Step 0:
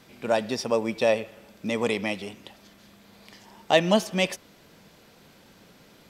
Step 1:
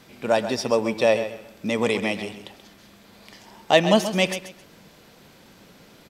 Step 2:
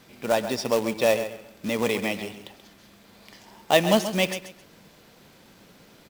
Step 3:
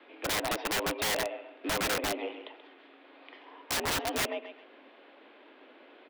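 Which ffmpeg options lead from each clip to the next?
-af "aecho=1:1:132|264|396:0.282|0.0676|0.0162,volume=1.41"
-af "acrusher=bits=3:mode=log:mix=0:aa=0.000001,volume=0.75"
-filter_complex "[0:a]highpass=f=220:t=q:w=0.5412,highpass=f=220:t=q:w=1.307,lowpass=f=3200:t=q:w=0.5176,lowpass=f=3200:t=q:w=0.7071,lowpass=f=3200:t=q:w=1.932,afreqshift=74,acrossover=split=500|1200[s0][s1][s2];[s0]acompressor=threshold=0.0224:ratio=4[s3];[s1]acompressor=threshold=0.0501:ratio=4[s4];[s2]acompressor=threshold=0.0126:ratio=4[s5];[s3][s4][s5]amix=inputs=3:normalize=0,aeval=exprs='(mod(16.8*val(0)+1,2)-1)/16.8':c=same"

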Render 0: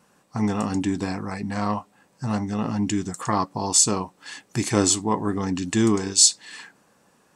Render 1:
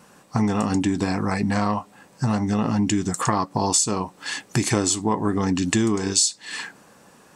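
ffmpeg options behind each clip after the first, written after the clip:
-af "acompressor=threshold=0.0447:ratio=6,volume=2.82"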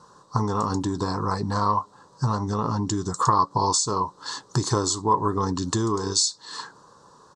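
-af "firequalizer=gain_entry='entry(140,0);entry(210,-9);entry(430,1);entry(720,-8);entry(1000,8);entry(2300,-24);entry(3900,1);entry(7100,-3);entry(13000,-28)':delay=0.05:min_phase=1"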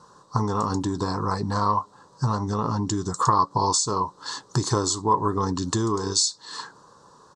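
-af anull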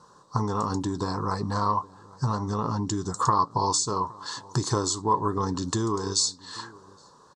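-filter_complex "[0:a]asplit=2[s0][s1];[s1]adelay=816.3,volume=0.0794,highshelf=f=4000:g=-18.4[s2];[s0][s2]amix=inputs=2:normalize=0,volume=0.75"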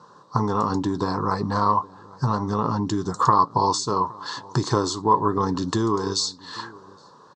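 -af "highpass=110,lowpass=4400,volume=1.78"

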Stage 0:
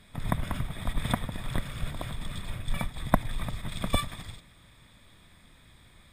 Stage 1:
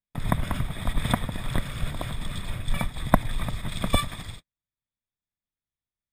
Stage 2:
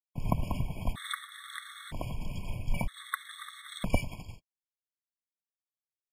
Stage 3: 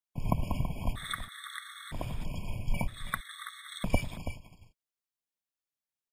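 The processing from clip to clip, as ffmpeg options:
-af "agate=range=0.00501:threshold=0.00708:ratio=16:detection=peak,volume=1.58"
-af "agate=range=0.0224:threshold=0.0224:ratio=3:detection=peak,afftfilt=real='re*gt(sin(2*PI*0.52*pts/sr)*(1-2*mod(floor(b*sr/1024/1100),2)),0)':imag='im*gt(sin(2*PI*0.52*pts/sr)*(1-2*mod(floor(b*sr/1024/1100),2)),0)':win_size=1024:overlap=0.75,volume=0.631"
-af "aecho=1:1:329:0.266"

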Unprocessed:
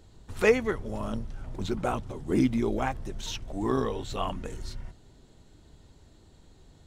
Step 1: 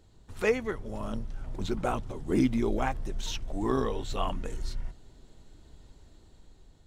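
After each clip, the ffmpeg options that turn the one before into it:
-af "asubboost=boost=2:cutoff=57,dynaudnorm=f=390:g=5:m=1.68,volume=0.562"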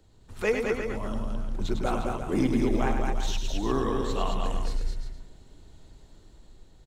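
-filter_complex "[0:a]acrossover=split=120|450|1900[s0][s1][s2][s3];[s1]aeval=exprs='clip(val(0),-1,0.0562)':c=same[s4];[s0][s4][s2][s3]amix=inputs=4:normalize=0,aecho=1:1:102|213|352|465:0.473|0.631|0.335|0.119"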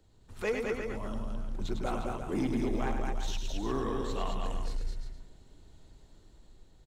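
-af "asoftclip=type=tanh:threshold=0.133,volume=0.596"

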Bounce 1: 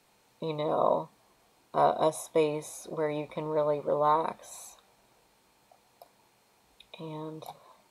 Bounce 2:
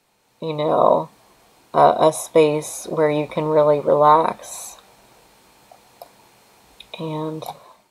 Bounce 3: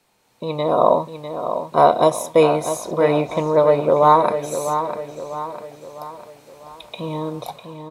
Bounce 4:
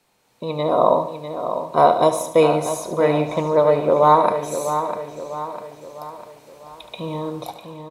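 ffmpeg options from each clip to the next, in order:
-af "dynaudnorm=f=190:g=5:m=3.76,volume=1.19"
-filter_complex "[0:a]acrossover=split=6200[s0][s1];[s0]aecho=1:1:650|1300|1950|2600|3250:0.355|0.167|0.0784|0.0368|0.0173[s2];[s1]asoftclip=type=tanh:threshold=0.0531[s3];[s2][s3]amix=inputs=2:normalize=0"
-af "aecho=1:1:73|146|219|292|365:0.251|0.126|0.0628|0.0314|0.0157,volume=0.891"

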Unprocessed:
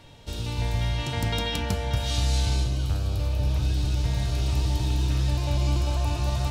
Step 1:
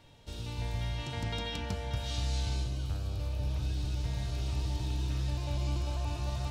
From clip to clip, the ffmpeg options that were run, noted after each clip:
-filter_complex "[0:a]acrossover=split=7900[s0][s1];[s1]acompressor=threshold=0.00282:ratio=4:attack=1:release=60[s2];[s0][s2]amix=inputs=2:normalize=0,volume=0.376"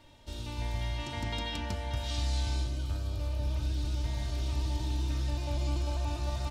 -af "aecho=1:1:3.3:0.52"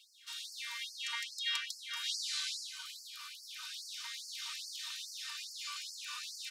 -af "afftfilt=real='re*gte(b*sr/1024,930*pow(4400/930,0.5+0.5*sin(2*PI*2.4*pts/sr)))':imag='im*gte(b*sr/1024,930*pow(4400/930,0.5+0.5*sin(2*PI*2.4*pts/sr)))':win_size=1024:overlap=0.75,volume=1.78"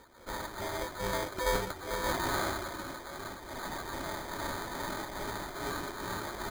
-af "acrusher=samples=16:mix=1:aa=0.000001,volume=2.11"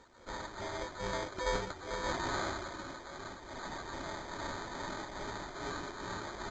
-af "volume=0.668" -ar 16000 -c:a pcm_alaw

